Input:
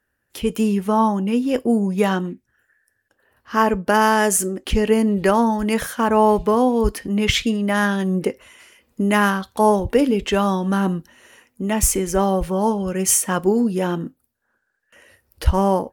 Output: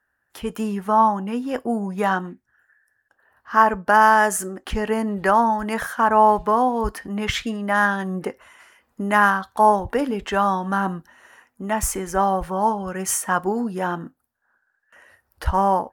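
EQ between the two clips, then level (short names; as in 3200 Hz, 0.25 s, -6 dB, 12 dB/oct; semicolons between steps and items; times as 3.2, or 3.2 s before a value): band shelf 1100 Hz +10 dB; -6.5 dB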